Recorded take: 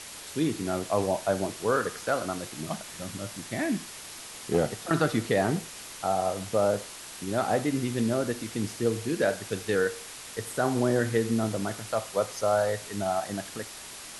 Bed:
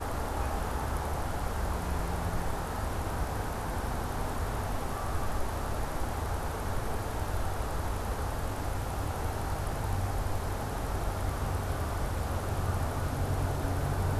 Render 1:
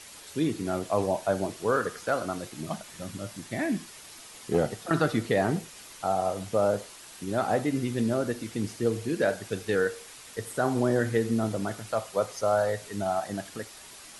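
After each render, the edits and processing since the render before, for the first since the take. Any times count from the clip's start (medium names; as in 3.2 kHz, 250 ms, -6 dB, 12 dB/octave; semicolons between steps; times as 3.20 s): noise reduction 6 dB, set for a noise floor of -43 dBFS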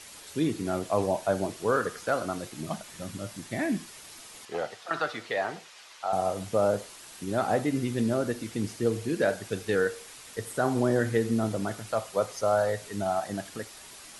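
4.45–6.13 s: three-band isolator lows -19 dB, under 540 Hz, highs -14 dB, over 6.1 kHz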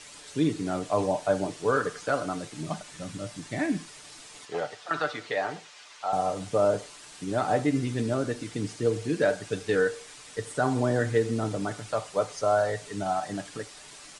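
steep low-pass 9.6 kHz 48 dB/octave; comb 6.8 ms, depth 44%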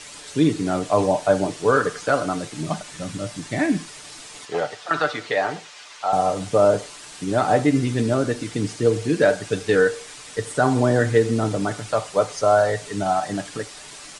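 trim +7 dB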